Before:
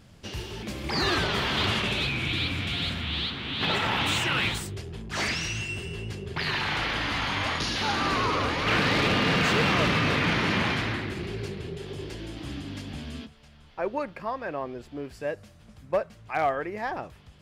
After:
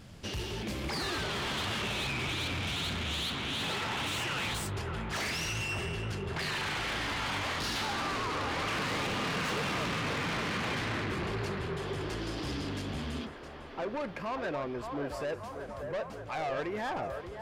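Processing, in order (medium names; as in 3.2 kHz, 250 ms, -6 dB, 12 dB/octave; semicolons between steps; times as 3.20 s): 12.21–12.69 s: peaking EQ 5.2 kHz +8 dB 0.58 oct; in parallel at -1 dB: gain riding within 3 dB; on the sum: peak limiter -16 dBFS, peak gain reduction 6.5 dB; saturation -26.5 dBFS, distortion -10 dB; feedback echo behind a band-pass 580 ms, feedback 69%, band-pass 820 Hz, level -5 dB; trim -4.5 dB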